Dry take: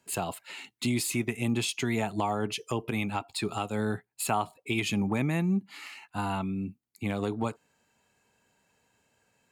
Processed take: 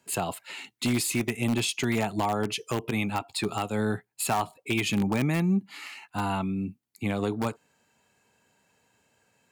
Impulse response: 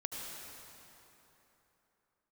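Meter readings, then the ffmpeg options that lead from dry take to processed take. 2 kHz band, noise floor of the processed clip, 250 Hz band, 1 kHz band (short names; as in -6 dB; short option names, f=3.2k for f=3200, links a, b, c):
+2.5 dB, -71 dBFS, +2.5 dB, +2.0 dB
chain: -filter_complex "[0:a]highpass=66,asplit=2[a][b];[b]aeval=exprs='(mod(10*val(0)+1,2)-1)/10':c=same,volume=-9dB[c];[a][c]amix=inputs=2:normalize=0"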